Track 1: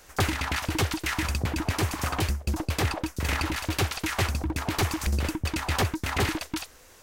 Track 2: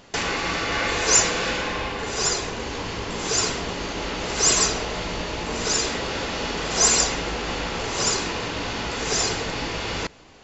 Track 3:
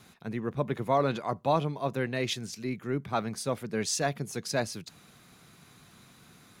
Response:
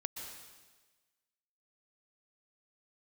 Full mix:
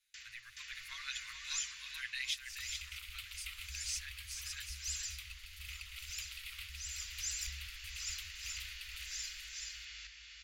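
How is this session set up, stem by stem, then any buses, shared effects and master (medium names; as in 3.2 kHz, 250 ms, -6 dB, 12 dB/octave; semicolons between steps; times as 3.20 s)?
-4.5 dB, 2.40 s, no send, echo send -5.5 dB, compression 10:1, threshold -33 dBFS, peak gain reduction 13 dB; static phaser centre 1.7 kHz, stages 6
-18.5 dB, 0.00 s, no send, echo send -3 dB, high-pass 59 Hz; auto duck -15 dB, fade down 0.55 s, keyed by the third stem
2.22 s -1.5 dB -> 2.43 s -11 dB, 0.00 s, no send, echo send -7 dB, peaking EQ 360 Hz -8.5 dB 2.1 oct; comb 7.5 ms, depth 83%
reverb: none
echo: delay 427 ms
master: gate with hold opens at -42 dBFS; inverse Chebyshev band-stop 130–810 Hz, stop band 50 dB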